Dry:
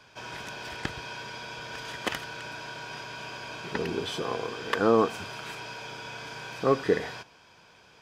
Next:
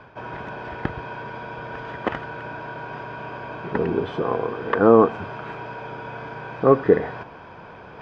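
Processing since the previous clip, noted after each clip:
low-pass filter 1,300 Hz 12 dB per octave
reversed playback
upward compression, threshold −40 dBFS
reversed playback
level +8.5 dB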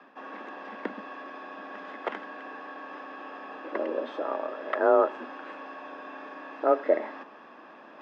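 frequency shifter +150 Hz
level −7.5 dB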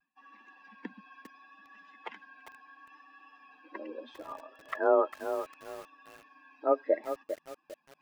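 spectral dynamics exaggerated over time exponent 2
pitch vibrato 0.72 Hz 32 cents
feedback echo at a low word length 401 ms, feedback 35%, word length 7 bits, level −9 dB
level −1.5 dB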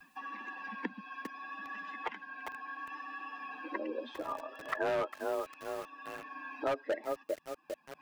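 hard clipping −25.5 dBFS, distortion −7 dB
multiband upward and downward compressor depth 70%
level +2 dB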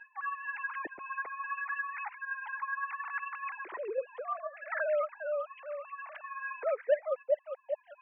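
three sine waves on the formant tracks
level +3.5 dB

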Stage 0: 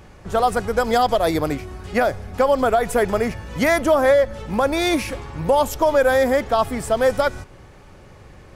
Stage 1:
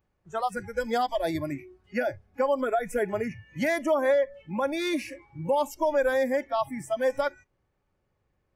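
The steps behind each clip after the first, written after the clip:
noise reduction from a noise print of the clip's start 23 dB
high-shelf EQ 4,700 Hz −5.5 dB
level −7.5 dB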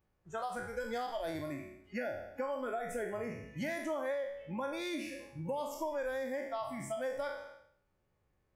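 peak hold with a decay on every bin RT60 0.61 s
downward compressor 2.5 to 1, threshold −34 dBFS, peak gain reduction 10.5 dB
level −4.5 dB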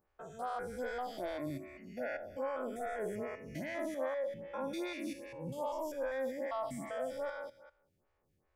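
spectrum averaged block by block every 200 ms
phaser with staggered stages 2.5 Hz
level +4 dB

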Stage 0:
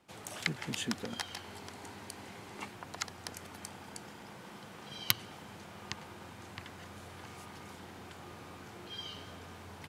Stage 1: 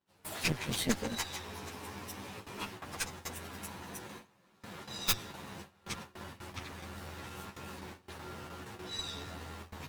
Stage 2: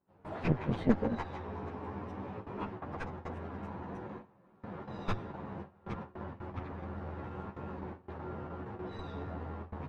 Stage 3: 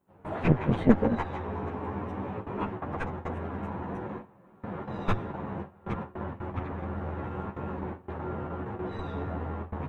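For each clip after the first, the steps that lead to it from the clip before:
partials spread apart or drawn together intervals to 108%; harmonic generator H 5 −17 dB, 8 −11 dB, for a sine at −17 dBFS; noise gate with hold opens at −36 dBFS; level +2 dB
low-pass filter 1,000 Hz 12 dB per octave; level +5.5 dB
parametric band 4,900 Hz −10 dB 0.65 octaves; level +7 dB

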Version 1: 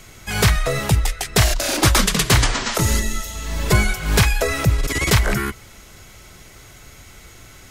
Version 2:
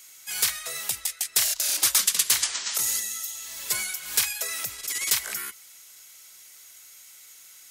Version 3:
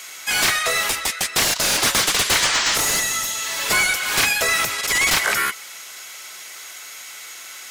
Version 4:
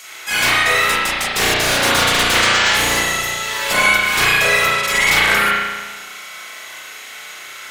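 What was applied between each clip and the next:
first difference
mid-hump overdrive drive 25 dB, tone 1,400 Hz, clips at −4.5 dBFS; level +5.5 dB
spring reverb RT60 1.3 s, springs 34 ms, chirp 25 ms, DRR −8 dB; level −2 dB

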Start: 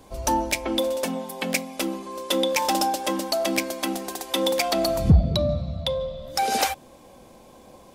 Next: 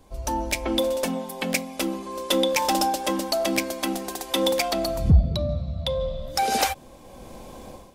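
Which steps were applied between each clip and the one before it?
low-shelf EQ 73 Hz +11 dB
automatic gain control gain up to 14 dB
every ending faded ahead of time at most 590 dB per second
level −6.5 dB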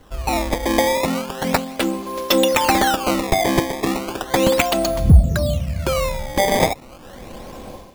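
sample-and-hold swept by an LFO 18×, swing 160% 0.35 Hz
level +6 dB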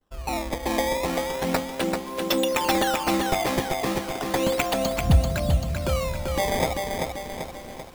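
mains-hum notches 50/100 Hz
downward expander −37 dBFS
feedback echo at a low word length 389 ms, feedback 55%, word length 7 bits, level −4 dB
level −7.5 dB

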